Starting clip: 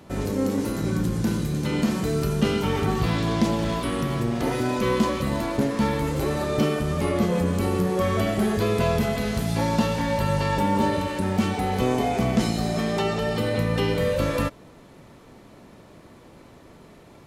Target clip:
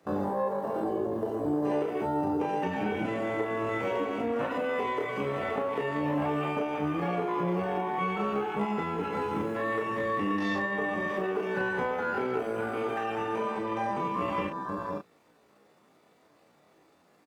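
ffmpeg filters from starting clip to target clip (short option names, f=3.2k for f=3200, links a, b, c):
-filter_complex "[0:a]acrossover=split=1700[a][b];[b]asoftclip=type=tanh:threshold=-34.5dB[c];[a][c]amix=inputs=2:normalize=0,highpass=81,bandreject=f=60:t=h:w=6,bandreject=f=120:t=h:w=6,bandreject=f=180:t=h:w=6,aecho=1:1:518:0.266,afwtdn=0.0355,acompressor=threshold=-29dB:ratio=10,lowshelf=f=130:g=6,asetrate=88200,aresample=44100,atempo=0.5,asplit=2[d][e];[e]adelay=34,volume=-4dB[f];[d][f]amix=inputs=2:normalize=0"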